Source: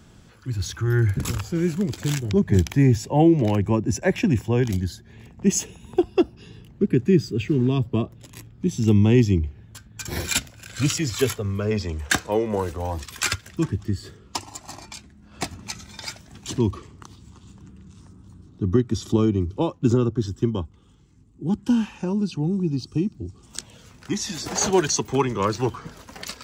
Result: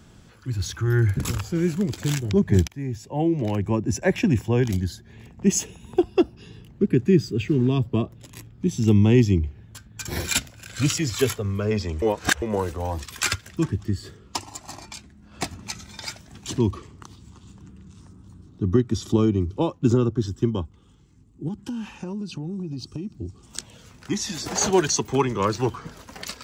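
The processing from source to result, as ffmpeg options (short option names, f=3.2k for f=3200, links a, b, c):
-filter_complex "[0:a]asettb=1/sr,asplit=3[a][b][c];[a]atrim=end=21.484[d];[b]atrim=start=21.48:end=23.1,asetpts=PTS-STARTPTS,afade=t=in:d=0.004:c=qsin,afade=t=out:st=1.616:d=0.004:c=qsin,acompressor=threshold=-27dB:ratio=12:attack=3.2:release=140:knee=1:detection=peak[e];[c]atrim=start=23.096[f];[d][e]acrossfade=d=0.004:c1=hsin:c2=qsin[g];[g][f]acrossfade=d=0.004:c1=qsin:c2=hsin,asplit=4[h][i][j][k];[h]atrim=end=2.68,asetpts=PTS-STARTPTS,afade=t=out:st=2.676:d=0.004:c=hsin:silence=0.105925[l];[i]atrim=start=2.68:end=12.022,asetpts=PTS-STARTPTS,afade=t=in:d=1.38:silence=0.105925[m];[j]atrim=start=12.018:end=12.422,asetpts=PTS-STARTPTS,areverse[n];[k]atrim=start=12.418[o];[l][m]concat=n=2:v=0:a=1[p];[p][n]acrossfade=d=0.004:c1=hsin:c2=hsin[q];[q][o]acrossfade=d=0.004:c1=hsin:c2=hsin"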